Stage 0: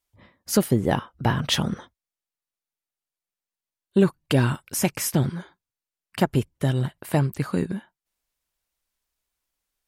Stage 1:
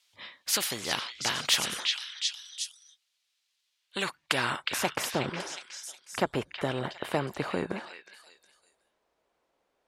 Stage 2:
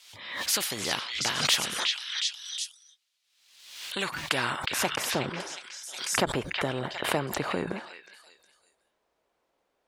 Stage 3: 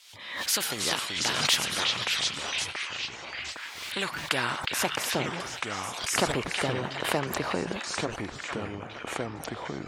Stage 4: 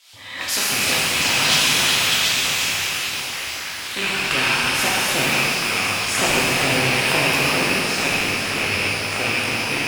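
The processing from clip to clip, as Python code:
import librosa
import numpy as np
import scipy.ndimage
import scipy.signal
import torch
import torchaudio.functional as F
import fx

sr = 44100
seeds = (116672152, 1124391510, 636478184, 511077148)

y1 = fx.filter_sweep_bandpass(x, sr, from_hz=3700.0, to_hz=530.0, start_s=3.69, end_s=5.24, q=1.4)
y1 = fx.echo_stepped(y1, sr, ms=364, hz=3000.0, octaves=0.7, feedback_pct=70, wet_db=-4.5)
y1 = fx.spectral_comp(y1, sr, ratio=2.0)
y1 = y1 * librosa.db_to_amplitude(3.0)
y2 = fx.pre_swell(y1, sr, db_per_s=62.0)
y3 = fx.echo_pitch(y2, sr, ms=195, semitones=-4, count=3, db_per_echo=-6.0)
y4 = fx.rattle_buzz(y3, sr, strikes_db=-44.0, level_db=-15.0)
y4 = fx.rev_shimmer(y4, sr, seeds[0], rt60_s=2.5, semitones=12, shimmer_db=-8, drr_db=-7.0)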